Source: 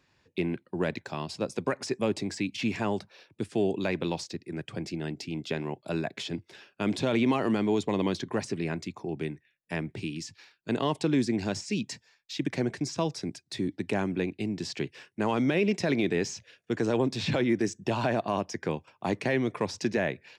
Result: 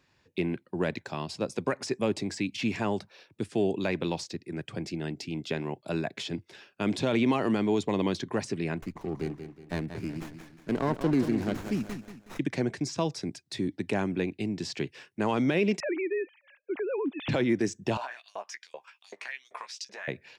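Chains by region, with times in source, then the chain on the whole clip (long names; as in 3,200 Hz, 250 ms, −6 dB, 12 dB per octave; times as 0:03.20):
0:08.77–0:12.39: Butterworth band-reject 3,100 Hz, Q 2.3 + repeating echo 184 ms, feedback 39%, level −9.5 dB + windowed peak hold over 9 samples
0:15.80–0:17.29: three sine waves on the formant tracks + downward compressor 2 to 1, threshold −30 dBFS
0:17.97–0:20.08: double-tracking delay 15 ms −5.5 dB + downward compressor 2.5 to 1, threshold −40 dBFS + auto-filter high-pass saw up 2.6 Hz 540–6,500 Hz
whole clip: no processing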